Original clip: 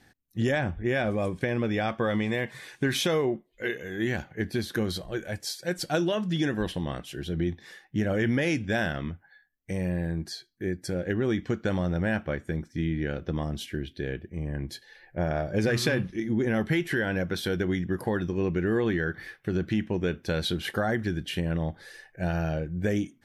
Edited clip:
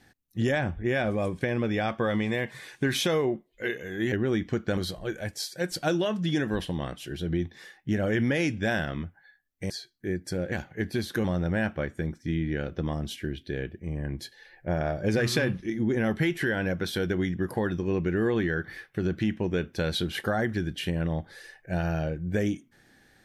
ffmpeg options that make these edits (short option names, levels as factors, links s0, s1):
-filter_complex "[0:a]asplit=6[s0][s1][s2][s3][s4][s5];[s0]atrim=end=4.122[s6];[s1]atrim=start=11.088:end=11.742[s7];[s2]atrim=start=4.838:end=9.772[s8];[s3]atrim=start=10.268:end=11.092[s9];[s4]atrim=start=4.118:end=4.842[s10];[s5]atrim=start=11.738[s11];[s6][s7]acrossfade=d=0.004:c1=hsin:c2=hsin[s12];[s12][s8]acrossfade=d=0.004:c1=hsin:c2=hsin[s13];[s13][s9]acrossfade=d=0.004:c1=hsin:c2=hsin[s14];[s14][s10]acrossfade=d=0.004:c1=hsin:c2=hsin[s15];[s15][s11]acrossfade=d=0.004:c1=hsin:c2=hsin"